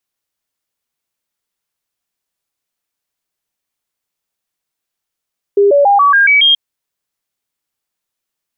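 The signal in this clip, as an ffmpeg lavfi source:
-f lavfi -i "aevalsrc='0.531*clip(min(mod(t,0.14),0.14-mod(t,0.14))/0.005,0,1)*sin(2*PI*403*pow(2,floor(t/0.14)/2)*mod(t,0.14))':d=0.98:s=44100"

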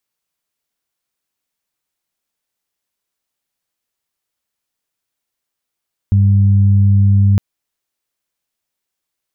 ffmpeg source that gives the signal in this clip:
-f lavfi -i "aevalsrc='0.422*sin(2*PI*99.4*t)+0.119*sin(2*PI*198.8*t)':d=1.26:s=44100"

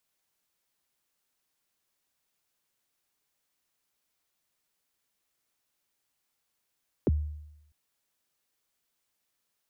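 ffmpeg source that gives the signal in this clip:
-f lavfi -i "aevalsrc='0.112*pow(10,-3*t/0.87)*sin(2*PI*(510*0.028/log(75/510)*(exp(log(75/510)*min(t,0.028)/0.028)-1)+75*max(t-0.028,0)))':d=0.65:s=44100"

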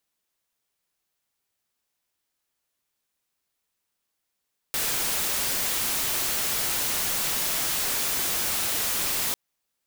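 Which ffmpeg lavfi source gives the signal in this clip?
-f lavfi -i "anoisesrc=c=white:a=0.0819:d=4.6:r=44100:seed=1"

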